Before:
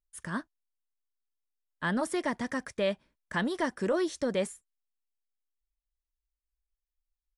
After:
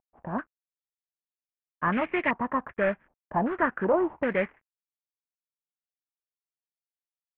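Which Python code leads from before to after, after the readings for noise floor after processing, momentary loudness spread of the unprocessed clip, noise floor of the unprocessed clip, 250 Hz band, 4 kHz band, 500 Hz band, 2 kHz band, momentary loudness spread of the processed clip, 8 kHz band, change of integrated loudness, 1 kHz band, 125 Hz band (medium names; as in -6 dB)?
under -85 dBFS, 8 LU, under -85 dBFS, +2.5 dB, no reading, +3.5 dB, +5.0 dB, 10 LU, under -35 dB, +4.0 dB, +8.0 dB, +2.5 dB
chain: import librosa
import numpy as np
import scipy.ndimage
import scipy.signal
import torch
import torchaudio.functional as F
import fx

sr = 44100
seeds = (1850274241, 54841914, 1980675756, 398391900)

p1 = fx.cvsd(x, sr, bps=16000)
p2 = np.where(np.abs(p1) >= 10.0 ** (-37.5 / 20.0), p1, 0.0)
p3 = p1 + (p2 * librosa.db_to_amplitude(-10.5))
y = fx.filter_held_lowpass(p3, sr, hz=2.6, low_hz=780.0, high_hz=2300.0)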